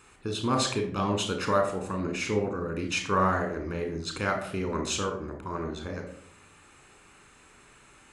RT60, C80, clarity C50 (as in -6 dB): 0.60 s, 11.5 dB, 7.5 dB